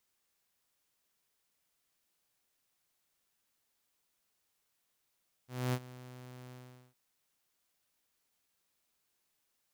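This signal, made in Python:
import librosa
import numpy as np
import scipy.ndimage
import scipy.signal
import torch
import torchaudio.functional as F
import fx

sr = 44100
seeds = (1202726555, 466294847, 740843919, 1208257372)

y = fx.adsr_tone(sr, wave='saw', hz=126.0, attack_ms=251.0, decay_ms=57.0, sustain_db=-19.0, held_s=1.04, release_ms=422.0, level_db=-26.5)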